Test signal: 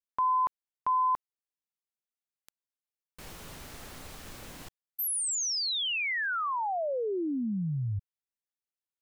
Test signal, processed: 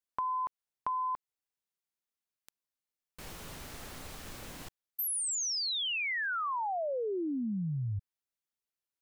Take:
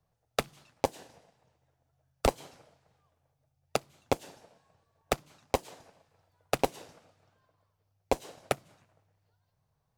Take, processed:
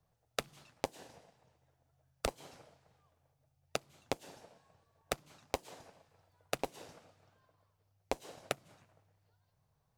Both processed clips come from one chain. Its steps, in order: compression 16:1, threshold -31 dBFS

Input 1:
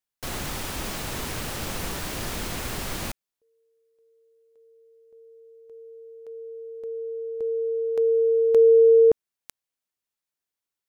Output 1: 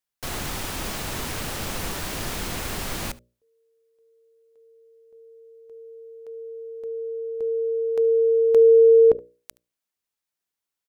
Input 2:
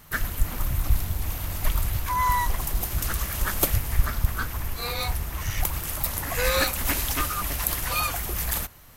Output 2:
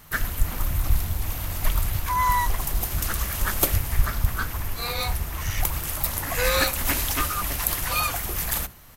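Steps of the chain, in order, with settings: hum notches 60/120/180/240/300/360/420/480/540/600 Hz; delay 73 ms -22.5 dB; trim +1.5 dB

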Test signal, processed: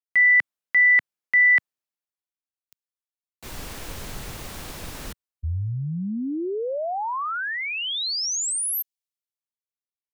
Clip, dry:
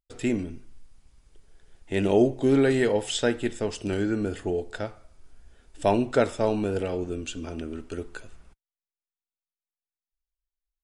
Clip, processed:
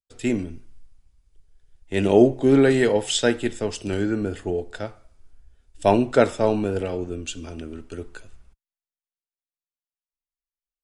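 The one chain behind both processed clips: three bands expanded up and down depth 40%; trim +3 dB

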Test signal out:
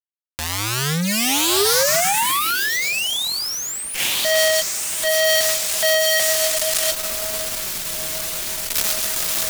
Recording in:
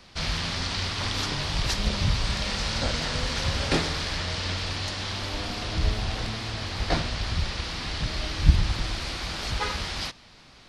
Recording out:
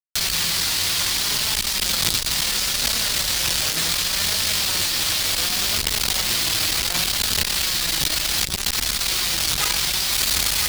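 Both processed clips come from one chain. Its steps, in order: on a send: echo that smears into a reverb 1085 ms, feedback 57%, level -10 dB; on the sum: companded quantiser 2-bit; pre-emphasis filter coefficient 0.9; flange 0.68 Hz, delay 4.5 ms, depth 2 ms, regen +54%; in parallel at -10 dB: fuzz box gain 38 dB, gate -47 dBFS; on the sum: compressor with a negative ratio -32 dBFS, ratio -1; treble shelf 7.8 kHz -8 dB; loudness maximiser +15 dB; transformer saturation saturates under 1.1 kHz

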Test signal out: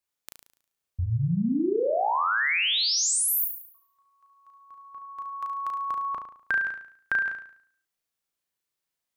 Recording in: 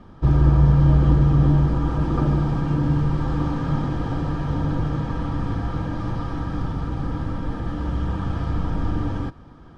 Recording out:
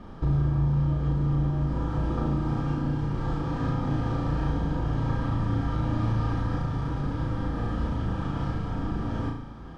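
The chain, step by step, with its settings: compression 5:1, threshold -27 dBFS; flutter echo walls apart 6.1 m, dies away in 0.58 s; trim +1 dB

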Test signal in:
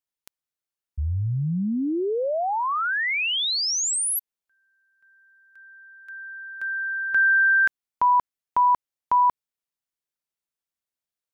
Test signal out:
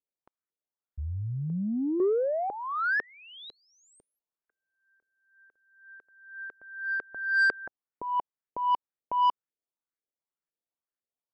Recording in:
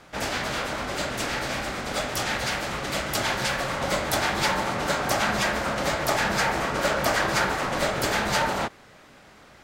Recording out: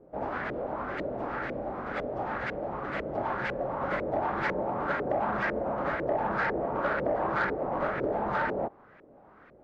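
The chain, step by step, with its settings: peaking EQ 350 Hz +5.5 dB 1.7 oct; LFO low-pass saw up 2 Hz 430–2000 Hz; saturation -9.5 dBFS; trim -8.5 dB

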